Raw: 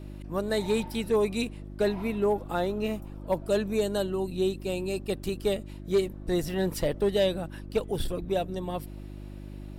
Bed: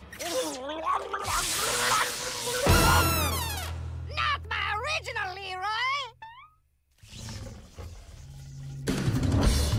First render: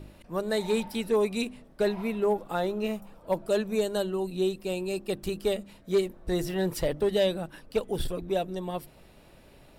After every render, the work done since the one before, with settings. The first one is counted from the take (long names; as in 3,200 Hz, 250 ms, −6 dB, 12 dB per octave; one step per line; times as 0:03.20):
hum removal 50 Hz, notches 7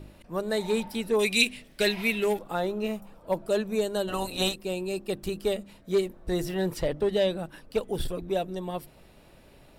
0:01.19–0:02.39: high shelf with overshoot 1,600 Hz +12 dB, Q 1.5
0:04.07–0:04.54: ceiling on every frequency bin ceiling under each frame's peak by 23 dB
0:06.74–0:07.39: high-shelf EQ 9,300 Hz −10 dB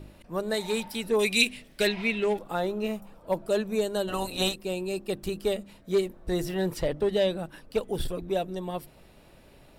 0:00.54–0:01.03: tilt shelving filter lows −3.5 dB, about 1,200 Hz
0:01.87–0:02.38: high-frequency loss of the air 85 metres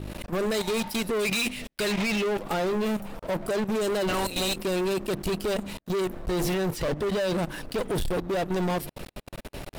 output level in coarse steps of 18 dB
leveller curve on the samples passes 5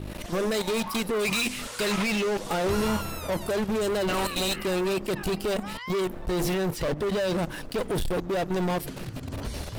mix in bed −11 dB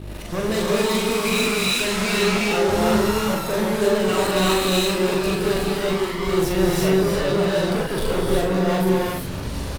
double-tracking delay 42 ms −3 dB
reverb whose tail is shaped and stops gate 400 ms rising, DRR −4 dB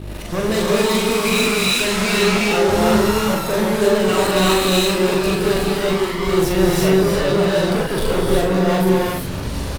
level +3.5 dB